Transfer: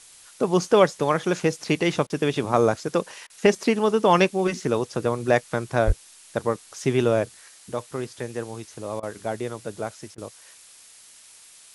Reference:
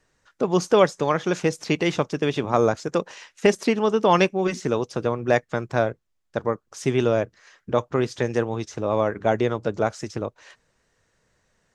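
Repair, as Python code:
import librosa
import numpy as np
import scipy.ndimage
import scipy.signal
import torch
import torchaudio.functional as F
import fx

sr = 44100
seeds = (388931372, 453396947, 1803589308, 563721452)

y = fx.highpass(x, sr, hz=140.0, slope=24, at=(5.86, 5.98), fade=0.02)
y = fx.fix_interpolate(y, sr, at_s=(2.07, 3.27, 9.0, 10.15), length_ms=28.0)
y = fx.noise_reduce(y, sr, print_start_s=10.75, print_end_s=11.25, reduce_db=19.0)
y = fx.fix_level(y, sr, at_s=7.48, step_db=8.0)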